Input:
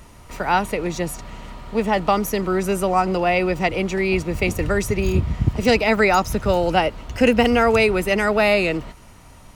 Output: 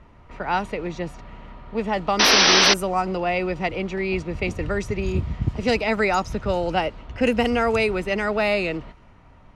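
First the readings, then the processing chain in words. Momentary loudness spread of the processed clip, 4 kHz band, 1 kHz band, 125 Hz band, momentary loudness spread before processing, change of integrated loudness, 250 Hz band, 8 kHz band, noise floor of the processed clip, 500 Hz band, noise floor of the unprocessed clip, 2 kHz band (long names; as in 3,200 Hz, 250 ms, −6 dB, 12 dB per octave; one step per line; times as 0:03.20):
15 LU, +7.5 dB, −3.0 dB, −4.5 dB, 9 LU, −1.5 dB, −4.5 dB, +6.5 dB, −50 dBFS, −4.0 dB, −45 dBFS, −1.0 dB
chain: sound drawn into the spectrogram noise, 0:02.19–0:02.74, 230–6,100 Hz −11 dBFS
low-pass that shuts in the quiet parts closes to 2,200 Hz, open at −9.5 dBFS
level −4.5 dB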